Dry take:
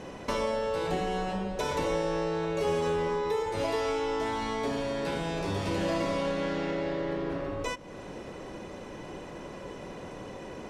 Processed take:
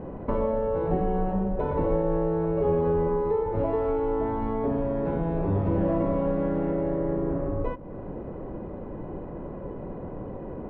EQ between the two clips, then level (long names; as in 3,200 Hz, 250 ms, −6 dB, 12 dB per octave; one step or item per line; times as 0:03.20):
low-pass filter 1,100 Hz 12 dB per octave
high-frequency loss of the air 110 metres
spectral tilt −2 dB per octave
+2.5 dB